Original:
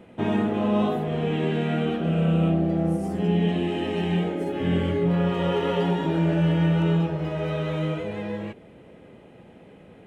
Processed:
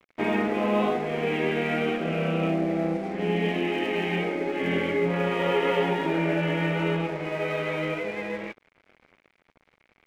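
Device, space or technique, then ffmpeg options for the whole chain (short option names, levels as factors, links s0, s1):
pocket radio on a weak battery: -af "highpass=270,lowpass=3100,aeval=exprs='sgn(val(0))*max(abs(val(0))-0.00501,0)':c=same,equalizer=f=2200:t=o:w=0.42:g=11.5,volume=1.26"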